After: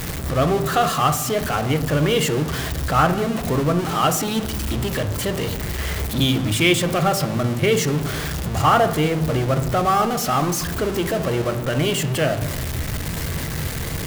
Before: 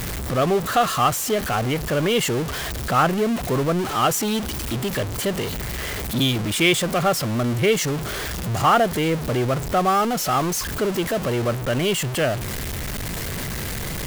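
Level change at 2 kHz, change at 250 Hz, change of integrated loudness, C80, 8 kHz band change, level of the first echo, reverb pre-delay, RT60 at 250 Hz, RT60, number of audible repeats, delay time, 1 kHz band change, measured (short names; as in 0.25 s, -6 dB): +0.5 dB, +1.5 dB, +1.0 dB, 14.5 dB, 0.0 dB, none, 3 ms, 1.7 s, 1.2 s, none, none, +1.0 dB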